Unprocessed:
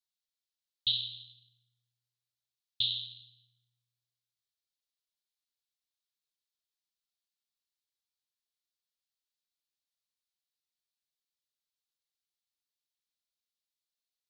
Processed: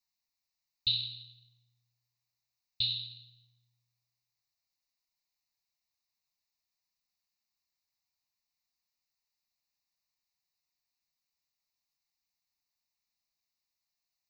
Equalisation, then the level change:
phaser with its sweep stopped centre 2,200 Hz, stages 8
+6.5 dB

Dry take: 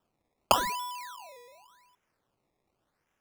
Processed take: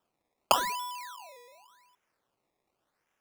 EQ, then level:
low-shelf EQ 230 Hz −10 dB
0.0 dB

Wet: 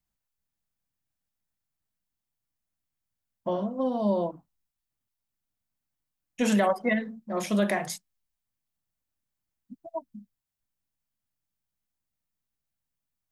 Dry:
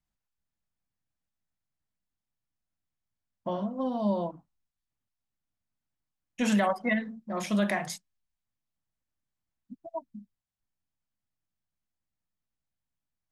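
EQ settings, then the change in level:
high-shelf EQ 9,500 Hz +8 dB
dynamic equaliser 430 Hz, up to +7 dB, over −43 dBFS, Q 1.5
0.0 dB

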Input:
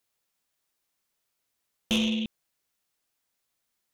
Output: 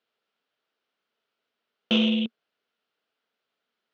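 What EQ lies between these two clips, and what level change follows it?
loudspeaker in its box 170–4,300 Hz, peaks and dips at 230 Hz +6 dB, 440 Hz +10 dB, 650 Hz +5 dB, 1,400 Hz +8 dB, 3,000 Hz +5 dB
0.0 dB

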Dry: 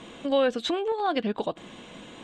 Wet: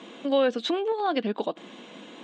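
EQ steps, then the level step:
high-pass filter 210 Hz 24 dB per octave
Chebyshev low-pass filter 5,500 Hz, order 2
low-shelf EQ 390 Hz +4 dB
0.0 dB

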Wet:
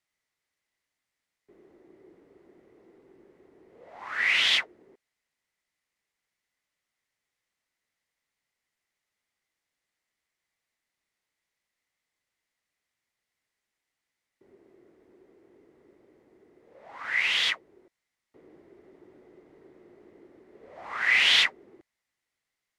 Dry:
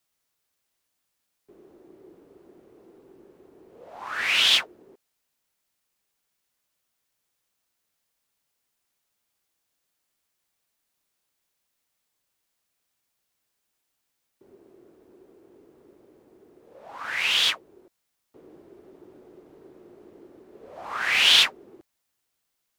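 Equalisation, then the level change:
high-frequency loss of the air 60 metres
parametric band 2,000 Hz +11.5 dB 0.29 octaves
high-shelf EQ 10,000 Hz +6 dB
−4.5 dB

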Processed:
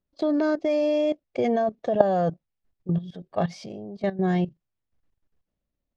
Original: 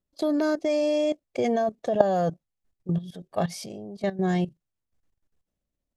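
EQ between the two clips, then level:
high-frequency loss of the air 150 metres
+1.5 dB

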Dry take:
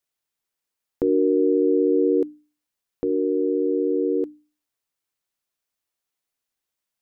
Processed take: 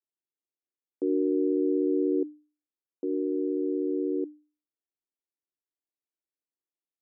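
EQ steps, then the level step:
four-pole ladder band-pass 360 Hz, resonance 55%
0.0 dB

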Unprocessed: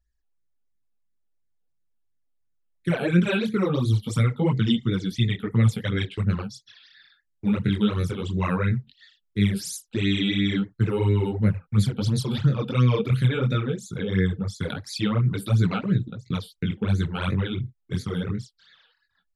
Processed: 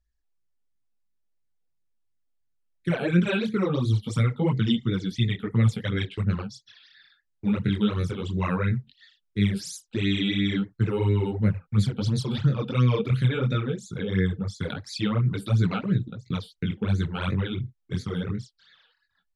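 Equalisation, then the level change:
low-pass filter 8,100 Hz 12 dB per octave
−1.5 dB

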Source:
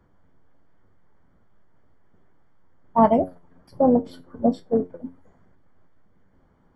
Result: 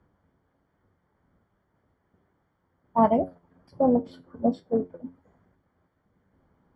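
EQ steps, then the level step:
high-pass filter 42 Hz
high-frequency loss of the air 56 metres
−3.5 dB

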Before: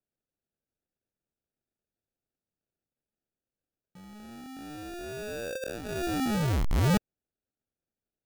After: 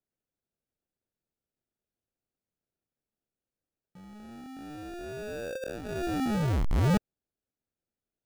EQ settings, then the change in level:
high-shelf EQ 2,200 Hz −6 dB
parametric band 16,000 Hz −3.5 dB 0.52 octaves
0.0 dB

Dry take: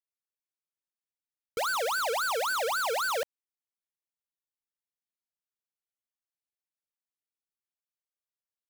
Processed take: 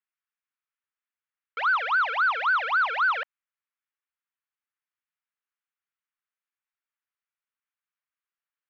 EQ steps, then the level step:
high-pass with resonance 1,300 Hz, resonance Q 1.7
low-pass filter 2,900 Hz 24 dB per octave
+4.0 dB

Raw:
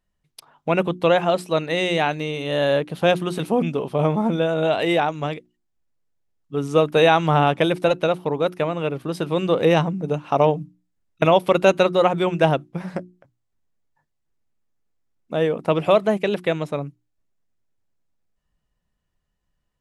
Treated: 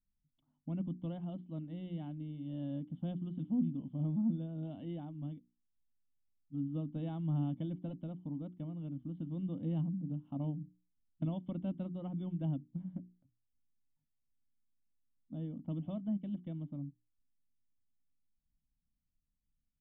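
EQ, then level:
formant resonators in series i
spectral tilt −2 dB per octave
phaser with its sweep stopped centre 1,000 Hz, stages 4
−5.0 dB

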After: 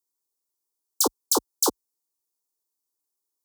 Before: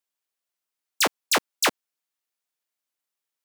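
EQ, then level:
high-pass filter 42 Hz 24 dB per octave
Butterworth band-reject 2,000 Hz, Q 0.54
phaser with its sweep stopped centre 640 Hz, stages 6
+5.0 dB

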